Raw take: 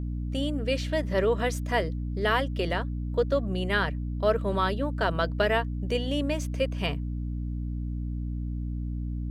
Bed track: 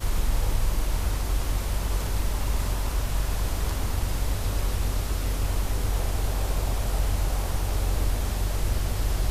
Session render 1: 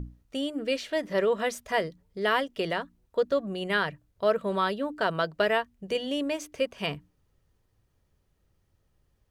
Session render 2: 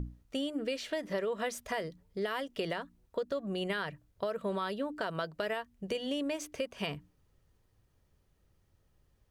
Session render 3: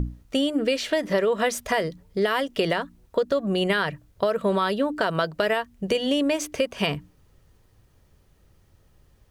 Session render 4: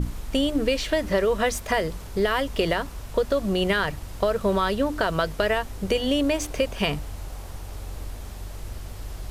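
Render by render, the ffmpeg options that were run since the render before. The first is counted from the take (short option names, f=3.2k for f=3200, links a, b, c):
-af "bandreject=f=60:t=h:w=6,bandreject=f=120:t=h:w=6,bandreject=f=180:t=h:w=6,bandreject=f=240:t=h:w=6,bandreject=f=300:t=h:w=6"
-filter_complex "[0:a]acrossover=split=5400[a][b];[a]alimiter=limit=-20.5dB:level=0:latency=1:release=201[c];[c][b]amix=inputs=2:normalize=0,acompressor=threshold=-31dB:ratio=4"
-af "volume=11.5dB"
-filter_complex "[1:a]volume=-10dB[a];[0:a][a]amix=inputs=2:normalize=0"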